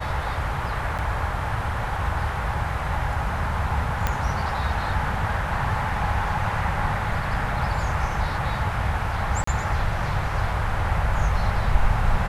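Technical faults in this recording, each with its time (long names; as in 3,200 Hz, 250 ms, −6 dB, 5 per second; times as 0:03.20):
0:00.98–0:00.99: drop-out 7.5 ms
0:04.07: click −8 dBFS
0:09.44–0:09.47: drop-out 34 ms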